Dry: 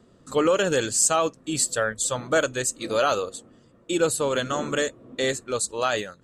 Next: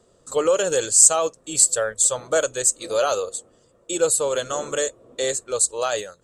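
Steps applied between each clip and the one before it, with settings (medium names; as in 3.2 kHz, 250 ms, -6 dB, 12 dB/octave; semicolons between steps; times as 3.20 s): ten-band graphic EQ 125 Hz -4 dB, 250 Hz -10 dB, 500 Hz +6 dB, 2 kHz -4 dB, 8 kHz +10 dB; trim -1 dB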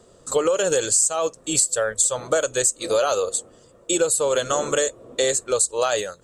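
compression 10:1, threshold -23 dBFS, peak gain reduction 15 dB; trim +6.5 dB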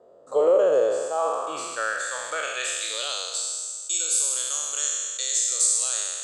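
spectral sustain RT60 2.02 s; band-pass sweep 610 Hz -> 5.8 kHz, 0.79–3.71 s; trim +1.5 dB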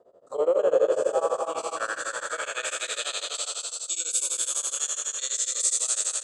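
bouncing-ball echo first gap 250 ms, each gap 0.6×, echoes 5; tremolo of two beating tones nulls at 12 Hz; trim -1.5 dB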